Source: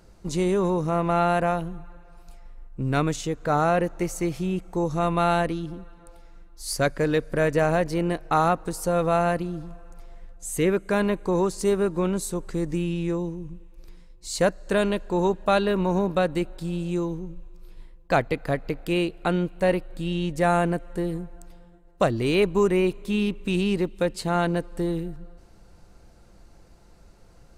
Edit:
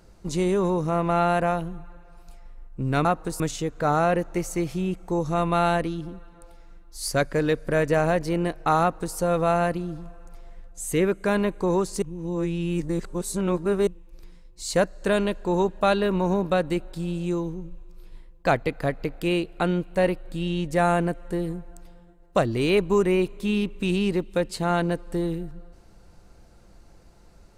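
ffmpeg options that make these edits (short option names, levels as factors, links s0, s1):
-filter_complex "[0:a]asplit=5[s0][s1][s2][s3][s4];[s0]atrim=end=3.052[s5];[s1]atrim=start=8.458:end=8.812[s6];[s2]atrim=start=3.048:end=11.672[s7];[s3]atrim=start=11.668:end=13.522,asetpts=PTS-STARTPTS,areverse[s8];[s4]atrim=start=13.518[s9];[s5][s6]acrossfade=d=0.004:c1=hsin:c2=hsin[s10];[s10][s7]acrossfade=d=0.004:c1=hsin:c2=hsin[s11];[s11][s8]acrossfade=d=0.004:c1=hsin:c2=hsin[s12];[s12][s9]acrossfade=d=0.004:c1=hsin:c2=hsin"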